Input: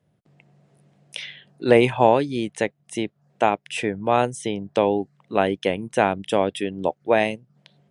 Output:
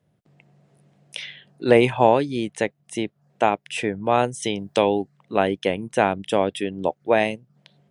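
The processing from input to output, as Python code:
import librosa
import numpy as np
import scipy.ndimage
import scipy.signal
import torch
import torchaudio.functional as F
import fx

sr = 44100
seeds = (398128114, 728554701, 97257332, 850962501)

y = fx.high_shelf(x, sr, hz=2800.0, db=11.0, at=(4.42, 5.02))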